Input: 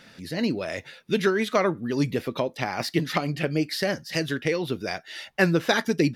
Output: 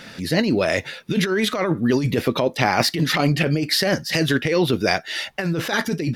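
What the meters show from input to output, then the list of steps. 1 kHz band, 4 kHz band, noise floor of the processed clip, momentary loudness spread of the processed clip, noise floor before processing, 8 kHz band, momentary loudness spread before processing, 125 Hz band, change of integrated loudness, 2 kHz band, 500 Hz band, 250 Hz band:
+5.5 dB, +8.5 dB, -42 dBFS, 5 LU, -53 dBFS, +8.0 dB, 9 LU, +7.0 dB, +5.5 dB, +5.0 dB, +4.0 dB, +5.0 dB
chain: negative-ratio compressor -27 dBFS, ratio -1; gain +8 dB

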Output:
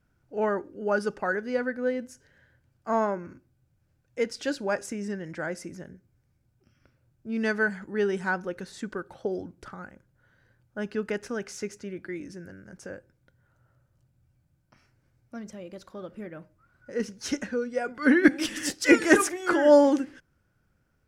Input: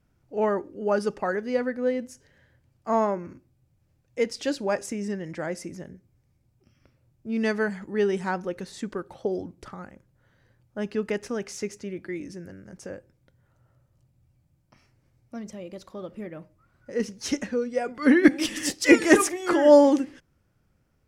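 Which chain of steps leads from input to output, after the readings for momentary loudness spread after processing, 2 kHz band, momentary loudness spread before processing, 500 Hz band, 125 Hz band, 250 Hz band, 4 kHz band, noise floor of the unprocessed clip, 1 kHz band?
22 LU, +1.0 dB, 22 LU, -2.5 dB, -2.5 dB, -2.5 dB, -2.5 dB, -68 dBFS, -1.5 dB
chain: bell 1500 Hz +9 dB 0.26 oct; gain -2.5 dB

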